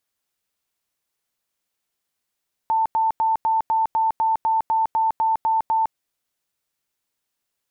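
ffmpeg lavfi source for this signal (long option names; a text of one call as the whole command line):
ffmpeg -f lavfi -i "aevalsrc='0.15*sin(2*PI*891*mod(t,0.25))*lt(mod(t,0.25),140/891)':duration=3.25:sample_rate=44100" out.wav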